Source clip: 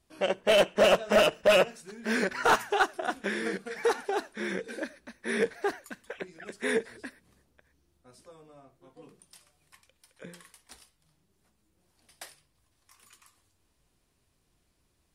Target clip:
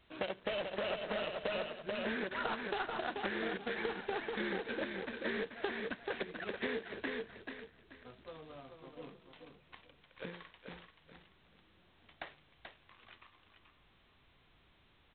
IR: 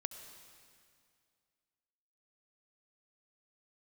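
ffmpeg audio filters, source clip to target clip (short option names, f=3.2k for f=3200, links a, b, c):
-filter_complex "[0:a]asplit=3[a][b][c];[a]afade=t=out:st=3.75:d=0.02[d];[b]lowshelf=f=99:g=9,afade=t=in:st=3.75:d=0.02,afade=t=out:st=4.49:d=0.02[e];[c]afade=t=in:st=4.49:d=0.02[f];[d][e][f]amix=inputs=3:normalize=0,acompressor=threshold=-31dB:ratio=12,aecho=1:1:434|868|1302:0.447|0.125|0.035,acrossover=split=210|1400|2900[g][h][i][j];[g]acompressor=threshold=-55dB:ratio=4[k];[h]acompressor=threshold=-39dB:ratio=4[l];[i]acompressor=threshold=-47dB:ratio=4[m];[j]acompressor=threshold=-55dB:ratio=4[n];[k][l][m][n]amix=inputs=4:normalize=0,volume=2dB" -ar 8000 -c:a adpcm_g726 -b:a 16k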